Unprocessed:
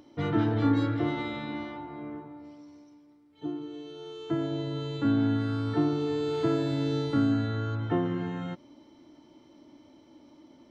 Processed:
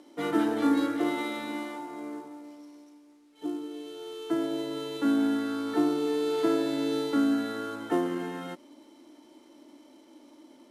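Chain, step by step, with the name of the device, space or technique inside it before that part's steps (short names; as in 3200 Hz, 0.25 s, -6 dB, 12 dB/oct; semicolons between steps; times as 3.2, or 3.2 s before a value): early wireless headset (HPF 240 Hz 24 dB/oct; CVSD 64 kbps); gain +2 dB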